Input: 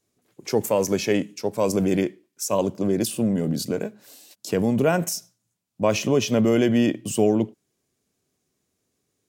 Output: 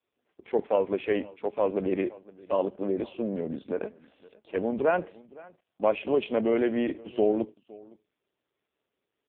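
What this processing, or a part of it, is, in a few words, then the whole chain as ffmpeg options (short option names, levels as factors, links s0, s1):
satellite phone: -af "highpass=340,lowpass=3100,aecho=1:1:514:0.0794,volume=0.841" -ar 8000 -c:a libopencore_amrnb -b:a 4750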